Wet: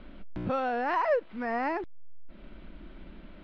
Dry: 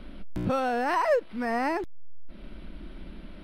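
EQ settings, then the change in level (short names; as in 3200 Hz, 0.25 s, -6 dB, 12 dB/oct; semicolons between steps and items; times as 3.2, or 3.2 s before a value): air absorption 240 m; low shelf 410 Hz -5.5 dB; 0.0 dB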